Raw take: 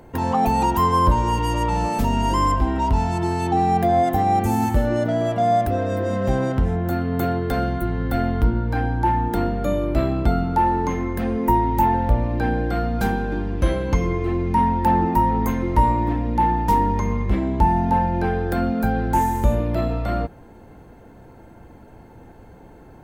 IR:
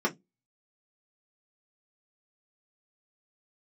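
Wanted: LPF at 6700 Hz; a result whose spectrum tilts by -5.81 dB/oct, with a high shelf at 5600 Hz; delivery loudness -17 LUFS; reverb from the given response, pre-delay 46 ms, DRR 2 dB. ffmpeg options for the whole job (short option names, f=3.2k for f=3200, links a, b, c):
-filter_complex "[0:a]lowpass=6.7k,highshelf=f=5.6k:g=-8,asplit=2[a][b];[1:a]atrim=start_sample=2205,adelay=46[c];[b][c]afir=irnorm=-1:irlink=0,volume=-12.5dB[d];[a][d]amix=inputs=2:normalize=0,volume=2dB"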